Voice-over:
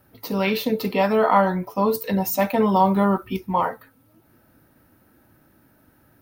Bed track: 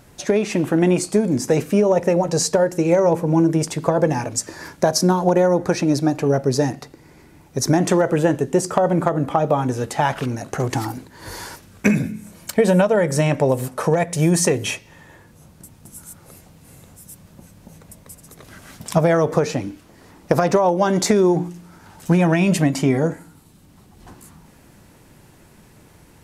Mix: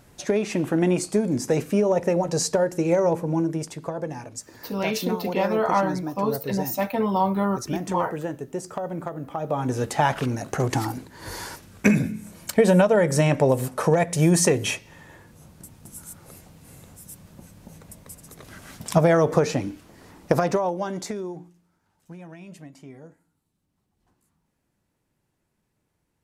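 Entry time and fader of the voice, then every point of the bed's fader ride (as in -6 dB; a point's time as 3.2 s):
4.40 s, -4.5 dB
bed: 3.06 s -4.5 dB
3.99 s -13 dB
9.32 s -13 dB
9.77 s -1.5 dB
20.23 s -1.5 dB
21.83 s -26 dB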